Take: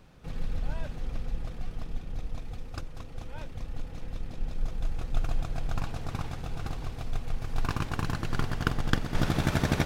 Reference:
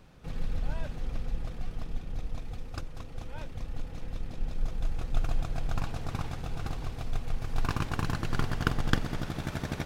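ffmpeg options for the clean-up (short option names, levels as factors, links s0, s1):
-af "asetnsamples=n=441:p=0,asendcmd='9.15 volume volume -8dB',volume=1"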